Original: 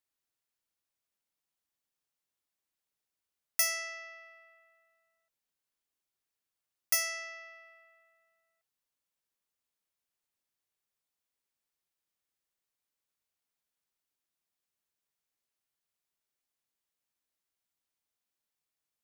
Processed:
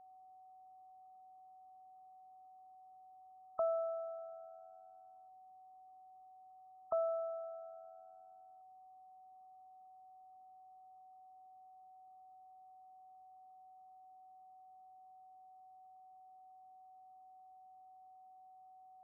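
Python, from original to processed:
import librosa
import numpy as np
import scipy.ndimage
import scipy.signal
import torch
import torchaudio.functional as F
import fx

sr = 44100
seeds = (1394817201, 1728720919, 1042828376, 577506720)

y = fx.brickwall_lowpass(x, sr, high_hz=1300.0)
y = y + 10.0 ** (-70.0 / 20.0) * np.sin(2.0 * np.pi * 750.0 * np.arange(len(y)) / sr)
y = F.gain(torch.from_numpy(y), 13.0).numpy()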